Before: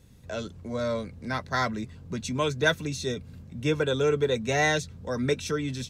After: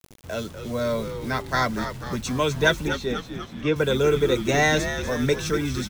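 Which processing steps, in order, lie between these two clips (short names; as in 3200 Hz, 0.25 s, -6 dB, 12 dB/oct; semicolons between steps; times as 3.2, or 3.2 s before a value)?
requantised 8-bit, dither none; 2.88–3.76 BPF 160–3200 Hz; on a send: frequency-shifting echo 0.245 s, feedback 58%, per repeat -91 Hz, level -9 dB; on the sum: gain +3.5 dB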